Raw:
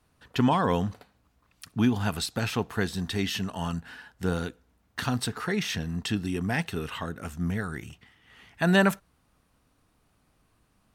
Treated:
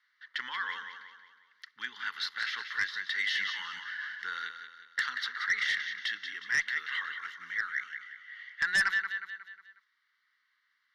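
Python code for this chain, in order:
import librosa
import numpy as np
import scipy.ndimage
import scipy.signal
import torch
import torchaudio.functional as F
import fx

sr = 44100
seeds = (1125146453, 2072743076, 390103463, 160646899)

p1 = fx.rider(x, sr, range_db=4, speed_s=0.5)
p2 = x + F.gain(torch.from_numpy(p1), -1.0).numpy()
p3 = fx.ladder_bandpass(p2, sr, hz=2200.0, resonance_pct=70)
p4 = fx.fixed_phaser(p3, sr, hz=2500.0, stages=6)
p5 = p4 + fx.echo_feedback(p4, sr, ms=181, feedback_pct=46, wet_db=-8.5, dry=0)
p6 = fx.cheby_harmonics(p5, sr, harmonics=(2, 5, 7), levels_db=(-21, -8, -25), full_scale_db=-18.5)
y = fx.sustainer(p6, sr, db_per_s=35.0, at=(3.21, 4.29))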